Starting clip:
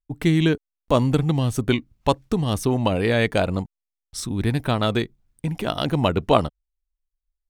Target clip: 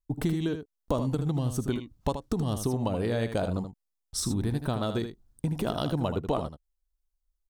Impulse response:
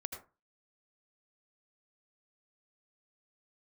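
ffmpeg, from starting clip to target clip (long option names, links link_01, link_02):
-filter_complex "[0:a]equalizer=frequency=2300:width=1.4:gain=-10,acompressor=threshold=-27dB:ratio=6,asplit=2[link_01][link_02];[link_02]aecho=0:1:78:0.355[link_03];[link_01][link_03]amix=inputs=2:normalize=0,volume=1.5dB"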